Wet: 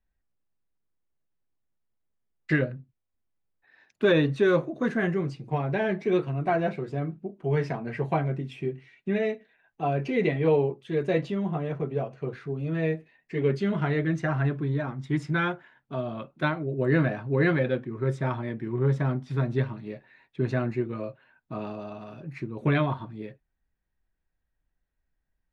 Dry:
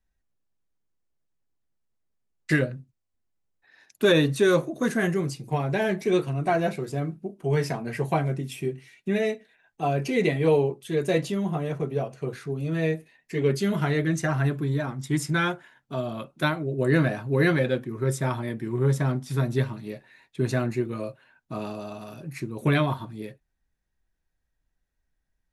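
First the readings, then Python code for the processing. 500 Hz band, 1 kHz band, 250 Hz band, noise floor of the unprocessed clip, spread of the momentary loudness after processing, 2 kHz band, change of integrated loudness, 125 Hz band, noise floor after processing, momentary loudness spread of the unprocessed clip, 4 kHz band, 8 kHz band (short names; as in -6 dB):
-1.5 dB, -1.5 dB, -1.5 dB, -78 dBFS, 13 LU, -2.0 dB, -1.5 dB, -1.5 dB, -80 dBFS, 13 LU, -6.5 dB, under -15 dB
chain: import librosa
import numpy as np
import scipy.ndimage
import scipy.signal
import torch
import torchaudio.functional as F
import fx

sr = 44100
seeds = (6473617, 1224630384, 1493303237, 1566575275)

y = scipy.signal.sosfilt(scipy.signal.butter(2, 2900.0, 'lowpass', fs=sr, output='sos'), x)
y = y * librosa.db_to_amplitude(-1.5)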